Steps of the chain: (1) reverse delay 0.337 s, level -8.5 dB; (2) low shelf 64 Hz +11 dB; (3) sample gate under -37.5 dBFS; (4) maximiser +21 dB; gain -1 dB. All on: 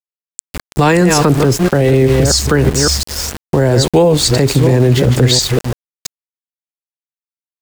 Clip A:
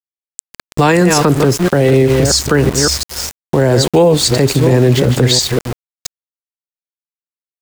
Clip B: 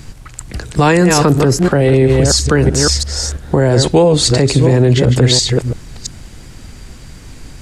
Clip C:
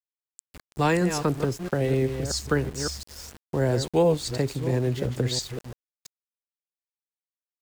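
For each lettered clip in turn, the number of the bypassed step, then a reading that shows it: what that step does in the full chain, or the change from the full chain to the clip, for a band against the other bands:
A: 2, 125 Hz band -1.5 dB; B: 3, distortion -22 dB; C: 4, crest factor change +6.0 dB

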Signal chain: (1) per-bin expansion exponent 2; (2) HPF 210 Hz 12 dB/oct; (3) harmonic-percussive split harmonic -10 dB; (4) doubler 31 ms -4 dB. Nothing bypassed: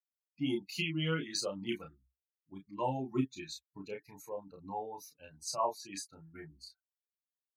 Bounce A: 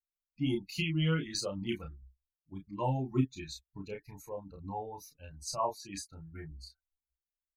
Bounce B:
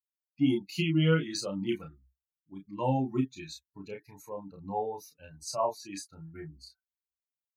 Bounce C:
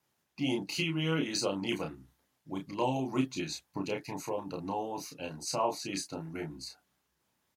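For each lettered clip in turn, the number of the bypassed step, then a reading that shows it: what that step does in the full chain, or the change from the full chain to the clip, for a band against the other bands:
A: 2, 125 Hz band +7.0 dB; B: 3, 125 Hz band +6.5 dB; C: 1, momentary loudness spread change -7 LU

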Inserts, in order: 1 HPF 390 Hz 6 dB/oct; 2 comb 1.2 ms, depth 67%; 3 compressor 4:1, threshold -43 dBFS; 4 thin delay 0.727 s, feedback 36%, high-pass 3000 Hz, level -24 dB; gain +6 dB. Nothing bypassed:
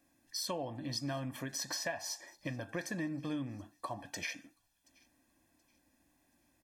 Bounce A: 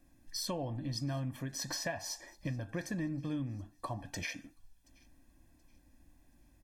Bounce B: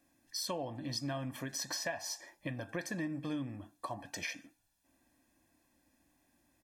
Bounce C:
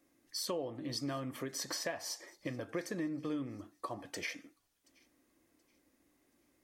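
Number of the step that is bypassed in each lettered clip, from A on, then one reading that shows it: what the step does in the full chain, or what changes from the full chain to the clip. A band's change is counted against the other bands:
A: 1, crest factor change -2.0 dB; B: 4, echo-to-direct -32.5 dB to none; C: 2, 500 Hz band +3.5 dB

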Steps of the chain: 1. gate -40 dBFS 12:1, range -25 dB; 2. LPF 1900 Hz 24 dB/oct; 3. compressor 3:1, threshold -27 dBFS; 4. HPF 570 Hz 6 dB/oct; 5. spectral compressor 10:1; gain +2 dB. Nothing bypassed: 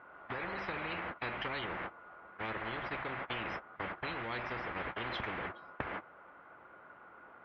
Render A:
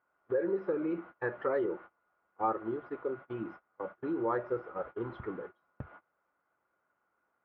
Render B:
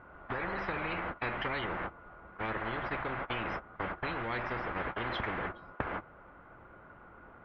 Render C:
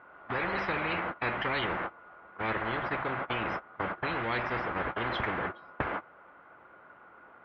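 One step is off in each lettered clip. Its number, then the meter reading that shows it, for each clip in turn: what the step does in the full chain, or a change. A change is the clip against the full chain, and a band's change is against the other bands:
5, 2 kHz band -12.5 dB; 4, 4 kHz band -3.5 dB; 3, crest factor change -2.0 dB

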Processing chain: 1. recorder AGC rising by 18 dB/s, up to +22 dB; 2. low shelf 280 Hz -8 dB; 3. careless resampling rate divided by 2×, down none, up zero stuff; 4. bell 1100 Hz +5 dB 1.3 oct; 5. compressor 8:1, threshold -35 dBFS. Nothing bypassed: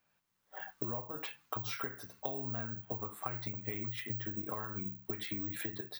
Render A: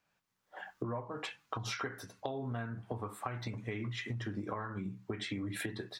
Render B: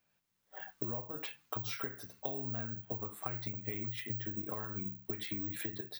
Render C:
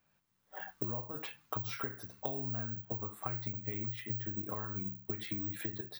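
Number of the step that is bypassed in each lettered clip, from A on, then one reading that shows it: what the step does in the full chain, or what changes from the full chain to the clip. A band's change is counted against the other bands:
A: 3, crest factor change -3.5 dB; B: 4, 1 kHz band -3.0 dB; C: 2, 125 Hz band +4.0 dB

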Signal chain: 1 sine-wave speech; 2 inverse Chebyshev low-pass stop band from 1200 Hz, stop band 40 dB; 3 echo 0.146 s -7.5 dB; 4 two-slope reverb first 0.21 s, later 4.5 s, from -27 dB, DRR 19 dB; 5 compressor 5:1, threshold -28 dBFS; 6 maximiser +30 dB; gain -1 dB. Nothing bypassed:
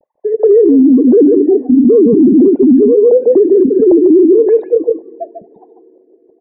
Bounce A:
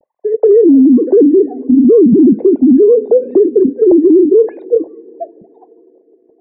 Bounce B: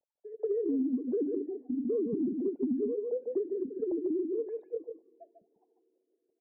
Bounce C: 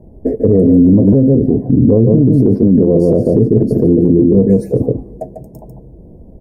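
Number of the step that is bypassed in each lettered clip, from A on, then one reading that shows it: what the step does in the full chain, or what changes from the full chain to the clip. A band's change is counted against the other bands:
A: 3, momentary loudness spread change +2 LU; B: 6, crest factor change +6.0 dB; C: 1, crest factor change +2.0 dB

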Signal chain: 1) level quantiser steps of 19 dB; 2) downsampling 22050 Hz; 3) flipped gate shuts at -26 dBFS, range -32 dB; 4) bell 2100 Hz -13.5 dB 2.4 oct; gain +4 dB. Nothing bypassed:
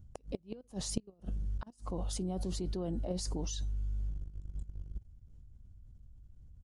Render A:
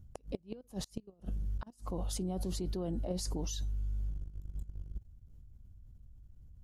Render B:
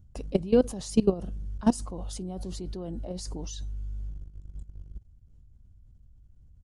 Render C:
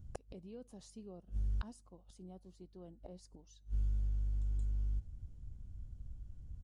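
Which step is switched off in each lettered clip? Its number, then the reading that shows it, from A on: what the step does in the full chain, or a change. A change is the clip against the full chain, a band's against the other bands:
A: 2, crest factor change -3.5 dB; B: 3, 4 kHz band -8.0 dB; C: 1, crest factor change -7.0 dB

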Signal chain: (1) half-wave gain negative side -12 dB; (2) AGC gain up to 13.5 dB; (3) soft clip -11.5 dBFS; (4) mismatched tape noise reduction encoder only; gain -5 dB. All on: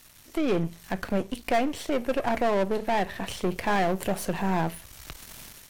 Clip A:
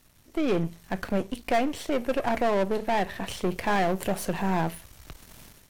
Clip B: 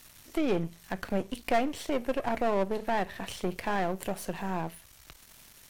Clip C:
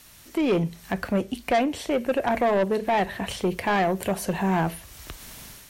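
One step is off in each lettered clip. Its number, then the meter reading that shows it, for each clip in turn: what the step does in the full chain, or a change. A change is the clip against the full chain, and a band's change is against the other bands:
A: 4, momentary loudness spread change -5 LU; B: 2, momentary loudness spread change -7 LU; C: 1, distortion -5 dB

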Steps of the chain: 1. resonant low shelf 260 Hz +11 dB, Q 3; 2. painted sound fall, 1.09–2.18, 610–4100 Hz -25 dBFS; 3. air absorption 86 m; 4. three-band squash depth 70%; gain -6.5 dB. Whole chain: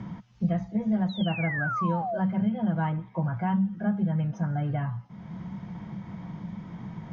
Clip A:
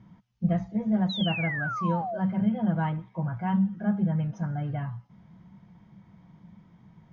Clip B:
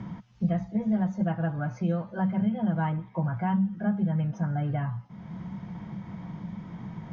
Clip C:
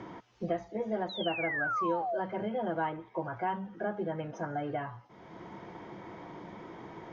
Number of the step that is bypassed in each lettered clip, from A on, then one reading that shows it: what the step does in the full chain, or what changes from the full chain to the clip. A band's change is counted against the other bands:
4, crest factor change +2.0 dB; 2, 2 kHz band -6.5 dB; 1, 125 Hz band -15.0 dB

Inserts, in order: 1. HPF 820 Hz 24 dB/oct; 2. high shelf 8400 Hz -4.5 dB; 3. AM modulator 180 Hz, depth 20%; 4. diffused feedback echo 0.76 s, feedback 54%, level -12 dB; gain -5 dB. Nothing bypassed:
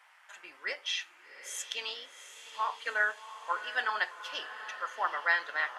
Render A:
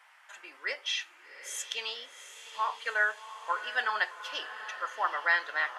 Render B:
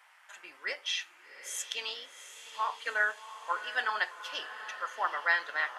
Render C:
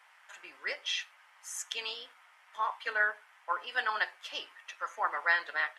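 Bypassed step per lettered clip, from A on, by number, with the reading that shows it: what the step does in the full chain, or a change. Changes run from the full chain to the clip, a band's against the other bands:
3, loudness change +1.5 LU; 2, 8 kHz band +1.5 dB; 4, echo-to-direct -10.5 dB to none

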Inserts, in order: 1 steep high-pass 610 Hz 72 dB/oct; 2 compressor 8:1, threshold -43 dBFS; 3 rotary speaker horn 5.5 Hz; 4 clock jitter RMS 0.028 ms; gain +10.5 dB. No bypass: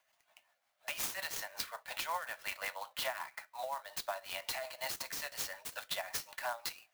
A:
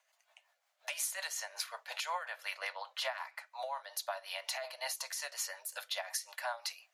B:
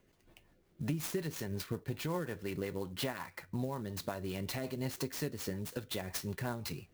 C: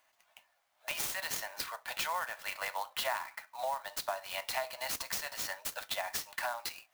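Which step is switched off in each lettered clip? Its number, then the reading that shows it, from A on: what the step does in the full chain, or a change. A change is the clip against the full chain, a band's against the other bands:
4, 8 kHz band +3.0 dB; 1, 125 Hz band +29.5 dB; 3, loudness change +3.0 LU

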